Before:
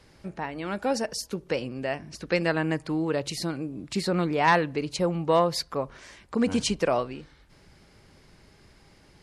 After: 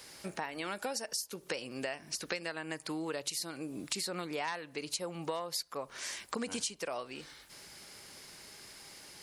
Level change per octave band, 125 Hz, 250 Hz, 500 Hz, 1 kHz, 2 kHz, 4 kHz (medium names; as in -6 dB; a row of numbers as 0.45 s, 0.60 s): -17.5 dB, -13.5 dB, -13.0 dB, -13.0 dB, -9.5 dB, -4.5 dB